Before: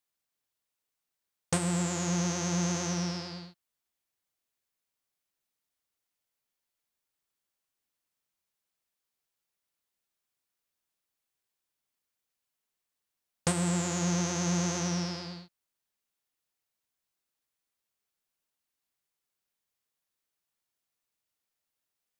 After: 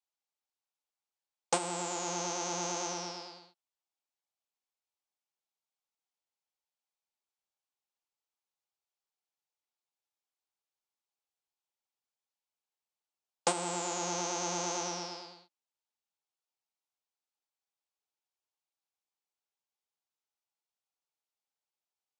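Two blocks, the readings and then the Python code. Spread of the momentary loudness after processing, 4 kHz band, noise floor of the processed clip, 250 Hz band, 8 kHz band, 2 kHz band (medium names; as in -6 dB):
10 LU, -1.5 dB, under -85 dBFS, -11.5 dB, -2.0 dB, -3.5 dB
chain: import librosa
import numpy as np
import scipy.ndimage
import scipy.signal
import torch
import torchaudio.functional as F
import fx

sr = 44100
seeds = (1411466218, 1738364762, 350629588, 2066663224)

y = fx.cabinet(x, sr, low_hz=270.0, low_slope=24, high_hz=8200.0, hz=(280.0, 830.0, 1800.0), db=(-6, 8, -7))
y = fx.upward_expand(y, sr, threshold_db=-47.0, expansion=1.5)
y = F.gain(torch.from_numpy(y), 2.5).numpy()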